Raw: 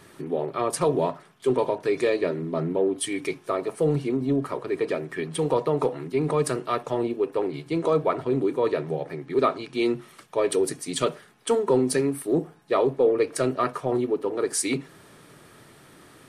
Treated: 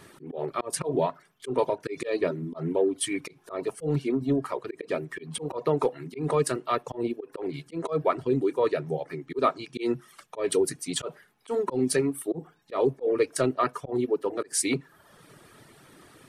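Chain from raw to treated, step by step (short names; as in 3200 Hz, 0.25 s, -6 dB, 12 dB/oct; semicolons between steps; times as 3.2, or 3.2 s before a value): auto swell 0.138 s; reverb removal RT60 0.82 s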